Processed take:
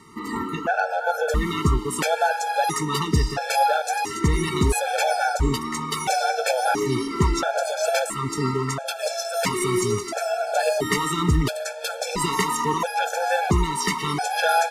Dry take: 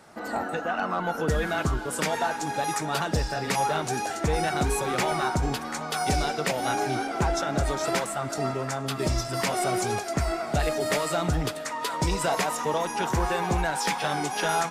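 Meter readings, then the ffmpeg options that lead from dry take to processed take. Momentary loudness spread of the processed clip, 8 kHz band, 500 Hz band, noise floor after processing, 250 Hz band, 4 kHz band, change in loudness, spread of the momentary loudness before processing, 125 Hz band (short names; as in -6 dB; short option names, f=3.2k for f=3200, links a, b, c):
5 LU, +3.5 dB, +3.5 dB, -32 dBFS, +4.0 dB, +3.5 dB, +4.0 dB, 4 LU, +4.0 dB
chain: -af "afftfilt=real='re*gt(sin(2*PI*0.74*pts/sr)*(1-2*mod(floor(b*sr/1024/450),2)),0)':imag='im*gt(sin(2*PI*0.74*pts/sr)*(1-2*mod(floor(b*sr/1024/450),2)),0)':win_size=1024:overlap=0.75,volume=7dB"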